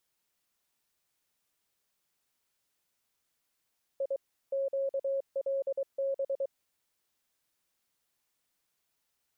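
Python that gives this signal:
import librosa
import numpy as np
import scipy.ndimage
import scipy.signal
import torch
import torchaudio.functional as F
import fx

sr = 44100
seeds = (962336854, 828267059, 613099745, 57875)

y = fx.morse(sr, text='I QLB', wpm=23, hz=546.0, level_db=-28.0)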